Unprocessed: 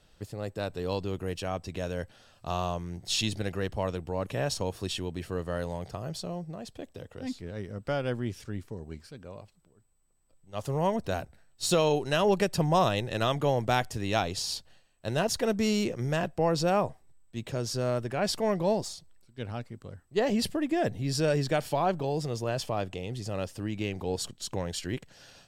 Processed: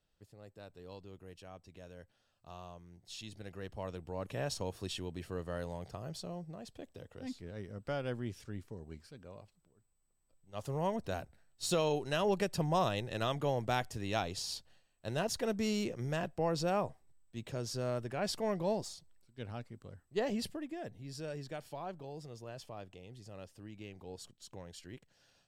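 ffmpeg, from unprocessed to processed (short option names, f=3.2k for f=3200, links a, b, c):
-af "volume=-7dB,afade=t=in:st=3.24:d=1.17:silence=0.266073,afade=t=out:st=20.18:d=0.6:silence=0.354813"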